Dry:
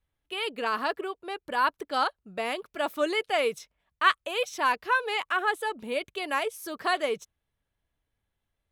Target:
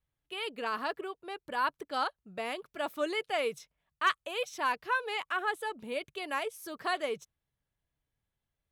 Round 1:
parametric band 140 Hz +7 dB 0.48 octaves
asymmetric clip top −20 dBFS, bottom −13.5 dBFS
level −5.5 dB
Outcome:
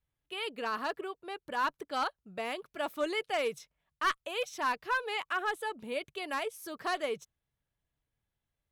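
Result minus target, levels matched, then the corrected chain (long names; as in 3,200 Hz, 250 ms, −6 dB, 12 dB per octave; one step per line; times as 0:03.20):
asymmetric clip: distortion +13 dB
parametric band 140 Hz +7 dB 0.48 octaves
asymmetric clip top −11.5 dBFS, bottom −13.5 dBFS
level −5.5 dB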